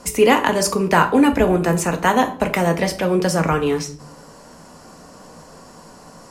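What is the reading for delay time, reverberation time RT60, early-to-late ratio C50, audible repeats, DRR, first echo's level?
no echo, 0.60 s, 14.0 dB, no echo, 5.0 dB, no echo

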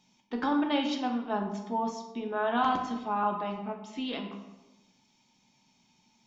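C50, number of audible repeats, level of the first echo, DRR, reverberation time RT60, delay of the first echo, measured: 6.5 dB, no echo, no echo, 2.5 dB, 1.0 s, no echo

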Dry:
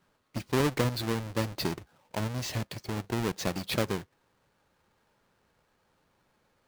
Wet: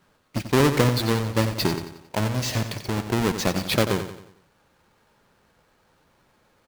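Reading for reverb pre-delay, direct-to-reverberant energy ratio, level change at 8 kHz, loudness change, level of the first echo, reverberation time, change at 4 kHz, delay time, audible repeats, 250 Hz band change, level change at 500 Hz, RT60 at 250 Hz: no reverb, no reverb, +8.0 dB, +8.0 dB, -10.0 dB, no reverb, +8.0 dB, 90 ms, 4, +8.0 dB, +8.0 dB, no reverb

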